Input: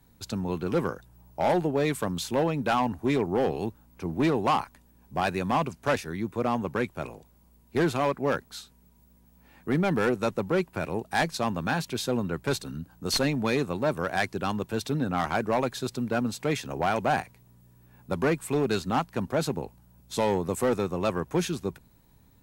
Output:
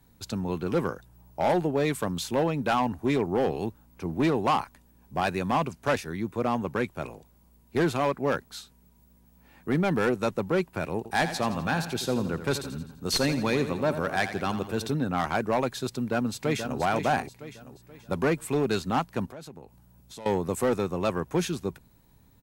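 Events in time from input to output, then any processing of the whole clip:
10.97–14.92 s: feedback delay 84 ms, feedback 52%, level -11 dB
15.87–16.80 s: echo throw 480 ms, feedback 40%, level -7.5 dB
19.26–20.26 s: compression 3:1, threshold -45 dBFS

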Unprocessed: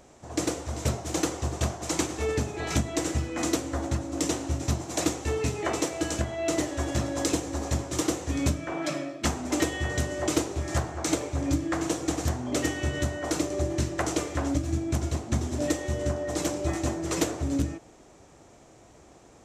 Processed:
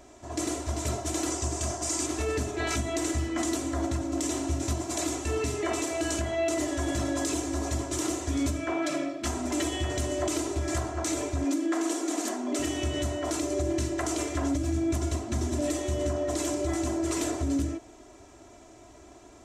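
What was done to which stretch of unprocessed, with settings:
1.31–2.06 s: time-frequency box 4.5–9.5 kHz +6 dB
11.44–12.59 s: brick-wall FIR high-pass 200 Hz
whole clip: comb 3 ms, depth 75%; dynamic bell 9.1 kHz, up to +5 dB, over -47 dBFS, Q 1.4; peak limiter -20 dBFS

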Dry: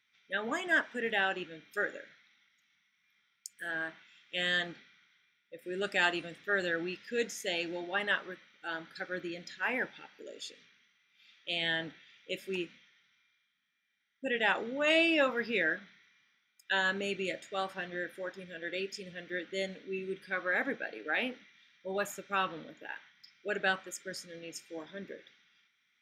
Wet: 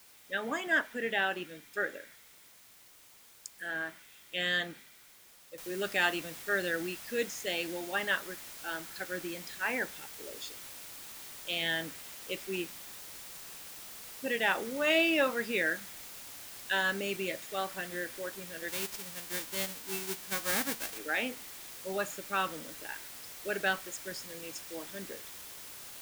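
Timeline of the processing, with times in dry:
5.58 s: noise floor step -58 dB -47 dB
18.68–20.97 s: formants flattened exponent 0.3

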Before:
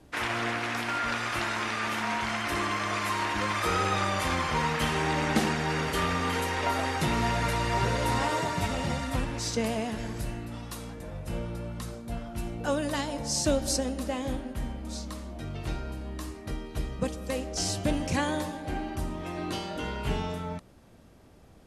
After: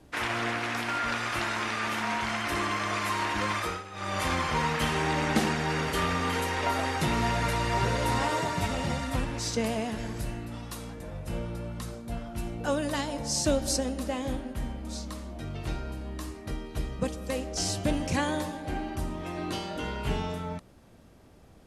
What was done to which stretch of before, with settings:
3.54–4.22 s: dip -16.5 dB, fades 0.29 s

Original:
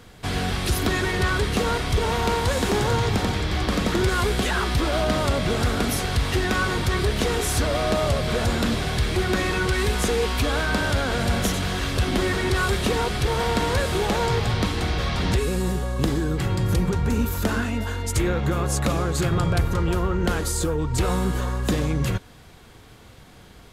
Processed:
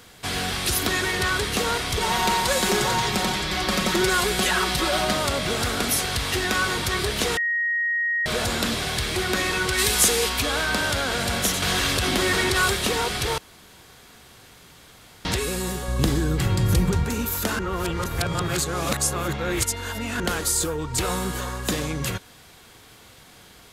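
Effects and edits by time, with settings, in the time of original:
2.00–5.13 s: comb 5.4 ms
7.37–8.26 s: bleep 1.88 kHz -22.5 dBFS
9.77–10.28 s: treble shelf 3.6 kHz -> 5.3 kHz +9 dB
11.62–12.73 s: level flattener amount 50%
13.38–15.25 s: room tone
15.88–17.04 s: bass shelf 200 Hz +11 dB
17.59–20.20 s: reverse
whole clip: tilt EQ +2 dB/octave

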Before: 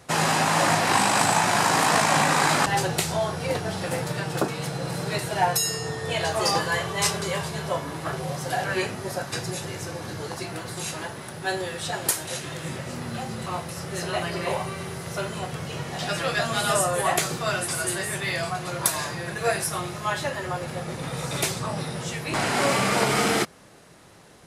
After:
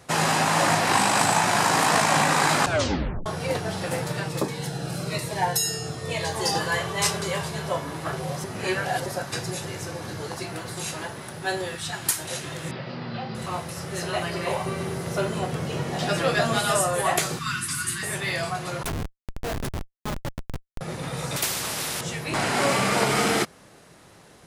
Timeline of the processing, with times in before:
2.62 s: tape stop 0.64 s
4.28–6.61 s: Shepard-style phaser falling 1.1 Hz
8.44–9.06 s: reverse
11.75–12.19 s: peaking EQ 520 Hz -12 dB 1 oct
12.71–13.35 s: Chebyshev band-pass 110–4900 Hz, order 5
14.66–16.59 s: peaking EQ 300 Hz +6.5 dB 2.6 oct
17.39–18.03 s: Chebyshev band-stop 290–1100 Hz, order 3
18.83–20.81 s: Schmitt trigger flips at -21 dBFS
21.36–22.01 s: spectrum-flattening compressor 4:1

